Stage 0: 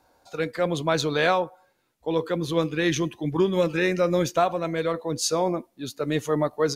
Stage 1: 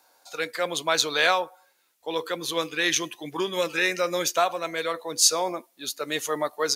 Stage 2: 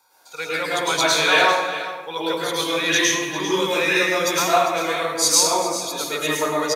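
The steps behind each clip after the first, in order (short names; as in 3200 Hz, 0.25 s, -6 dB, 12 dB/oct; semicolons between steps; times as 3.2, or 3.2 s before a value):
HPF 500 Hz 6 dB/oct; tilt +2.5 dB/oct; gain +1.5 dB
echo 0.398 s -13 dB; reverb RT60 1.0 s, pre-delay 0.103 s, DRR -6.5 dB; gain -3.5 dB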